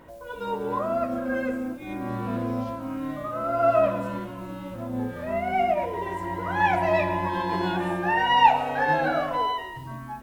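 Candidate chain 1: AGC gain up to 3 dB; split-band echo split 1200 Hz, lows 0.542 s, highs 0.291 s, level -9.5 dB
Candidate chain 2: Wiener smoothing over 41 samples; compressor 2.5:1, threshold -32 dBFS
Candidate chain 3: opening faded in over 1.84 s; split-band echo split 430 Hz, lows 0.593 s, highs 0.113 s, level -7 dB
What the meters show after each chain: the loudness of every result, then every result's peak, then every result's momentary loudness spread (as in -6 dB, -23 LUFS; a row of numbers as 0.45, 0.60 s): -22.5, -34.5, -24.5 LUFS; -4.0, -18.0, -4.5 dBFS; 11, 7, 13 LU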